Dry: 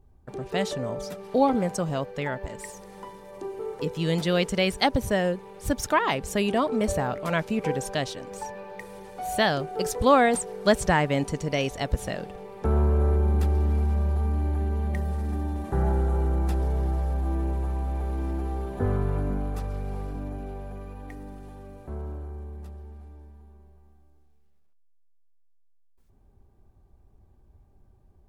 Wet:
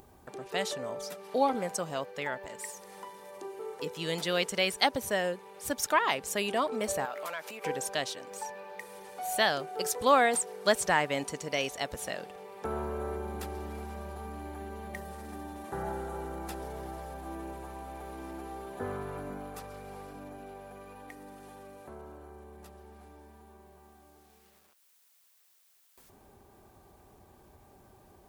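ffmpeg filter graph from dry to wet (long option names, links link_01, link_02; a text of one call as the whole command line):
ffmpeg -i in.wav -filter_complex "[0:a]asettb=1/sr,asplit=3[link_01][link_02][link_03];[link_01]atrim=end=7.054[link_04];[link_02]atrim=start=7.05:end=7.65,asetpts=PTS-STARTPTS,afade=type=in:duration=0.004:curve=qsin,afade=type=out:start_time=0.596:duration=0.004:curve=qsin,acompressor=threshold=-30dB:ratio=12:attack=3.2:release=140:knee=1:detection=peak,aemphasis=mode=production:type=bsi,asplit=2[link_05][link_06];[link_06]highpass=frequency=720:poles=1,volume=12dB,asoftclip=type=tanh:threshold=-20dB[link_07];[link_05][link_07]amix=inputs=2:normalize=0,lowpass=frequency=2000:poles=1,volume=-6dB[link_08];[link_03]atrim=start=7.646[link_09];[link_04][link_08]acrossfade=duration=0.004:curve1=hsin:curve2=qsin[link_10];[link_10][link_09]acrossfade=duration=0.004:curve1=qsin:curve2=hsin,highpass=frequency=650:poles=1,highshelf=frequency=9600:gain=6.5,acompressor=mode=upward:threshold=-41dB:ratio=2.5,volume=-1.5dB" out.wav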